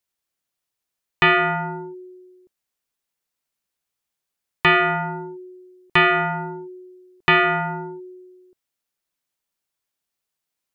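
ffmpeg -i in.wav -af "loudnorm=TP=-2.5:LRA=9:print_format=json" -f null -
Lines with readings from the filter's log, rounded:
"input_i" : "-19.3",
"input_tp" : "-9.2",
"input_lra" : "3.1",
"input_thresh" : "-32.6",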